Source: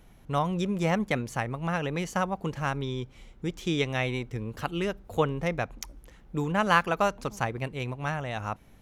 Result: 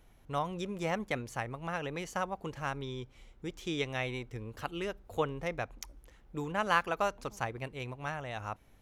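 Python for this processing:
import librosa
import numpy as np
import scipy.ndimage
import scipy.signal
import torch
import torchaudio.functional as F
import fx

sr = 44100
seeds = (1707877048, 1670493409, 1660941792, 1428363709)

y = fx.peak_eq(x, sr, hz=180.0, db=-6.0, octaves=0.95)
y = y * 10.0 ** (-5.5 / 20.0)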